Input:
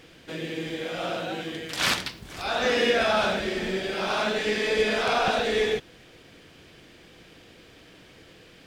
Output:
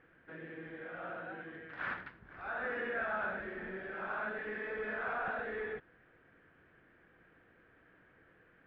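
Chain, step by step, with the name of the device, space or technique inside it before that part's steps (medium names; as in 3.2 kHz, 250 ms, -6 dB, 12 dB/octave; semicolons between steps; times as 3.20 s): overdriven synthesiser ladder filter (saturation -18.5 dBFS, distortion -17 dB; four-pole ladder low-pass 1.8 kHz, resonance 60%); trim -4.5 dB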